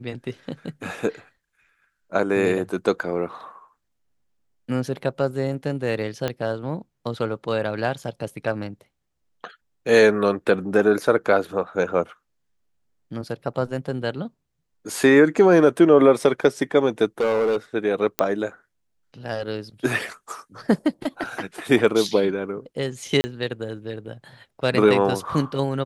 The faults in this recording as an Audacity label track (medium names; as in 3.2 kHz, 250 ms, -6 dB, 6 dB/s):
6.280000	6.280000	pop -11 dBFS
17.200000	17.560000	clipped -17 dBFS
18.190000	18.190000	pop -4 dBFS
23.210000	23.240000	dropout 30 ms